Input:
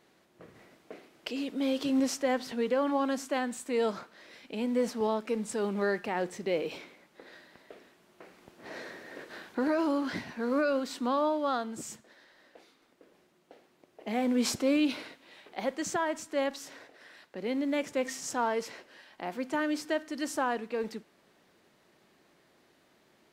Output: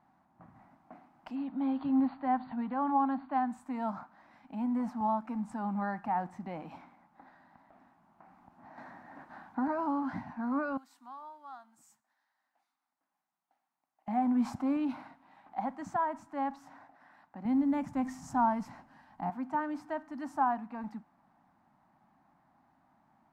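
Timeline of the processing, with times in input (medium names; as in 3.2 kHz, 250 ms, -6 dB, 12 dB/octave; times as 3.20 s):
1.35–3.48 s: brick-wall FIR low-pass 4.7 kHz
7.29–8.78 s: compression 2:1, threshold -51 dBFS
10.77–14.08 s: pre-emphasis filter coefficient 0.97
17.45–19.30 s: tone controls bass +12 dB, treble +7 dB
whole clip: FFT filter 270 Hz 0 dB, 440 Hz -26 dB, 790 Hz +7 dB, 3.2 kHz -21 dB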